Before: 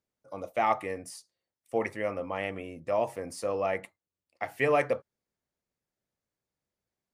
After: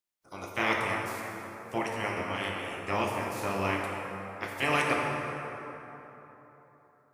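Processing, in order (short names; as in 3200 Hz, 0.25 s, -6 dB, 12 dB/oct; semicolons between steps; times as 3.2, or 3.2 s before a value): spectral limiter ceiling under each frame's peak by 25 dB; plate-style reverb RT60 3.7 s, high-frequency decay 0.5×, DRR -1.5 dB; gain -3.5 dB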